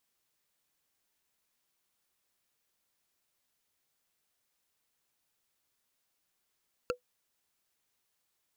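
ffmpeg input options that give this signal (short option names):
-f lavfi -i "aevalsrc='0.0631*pow(10,-3*t/0.11)*sin(2*PI*495*t)+0.0501*pow(10,-3*t/0.033)*sin(2*PI*1364.7*t)+0.0398*pow(10,-3*t/0.015)*sin(2*PI*2675*t)+0.0316*pow(10,-3*t/0.008)*sin(2*PI*4421.8*t)+0.0251*pow(10,-3*t/0.005)*sin(2*PI*6603.3*t)':d=0.45:s=44100"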